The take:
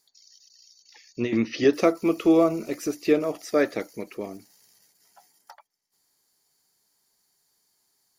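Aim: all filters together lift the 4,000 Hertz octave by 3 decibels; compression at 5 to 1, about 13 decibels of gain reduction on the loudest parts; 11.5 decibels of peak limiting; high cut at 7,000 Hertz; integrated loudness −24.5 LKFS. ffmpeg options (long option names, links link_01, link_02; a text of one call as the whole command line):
ffmpeg -i in.wav -af "lowpass=7000,equalizer=frequency=4000:width_type=o:gain=4.5,acompressor=threshold=-29dB:ratio=5,volume=16dB,alimiter=limit=-13dB:level=0:latency=1" out.wav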